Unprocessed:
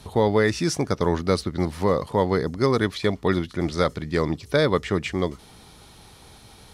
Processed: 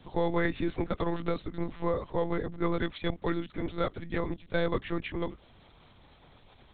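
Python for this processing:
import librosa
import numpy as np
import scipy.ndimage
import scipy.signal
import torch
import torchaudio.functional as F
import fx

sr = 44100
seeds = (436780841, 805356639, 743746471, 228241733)

y = fx.lpc_monotone(x, sr, seeds[0], pitch_hz=170.0, order=10)
y = fx.band_squash(y, sr, depth_pct=100, at=(0.45, 1.42))
y = y * 10.0 ** (-8.0 / 20.0)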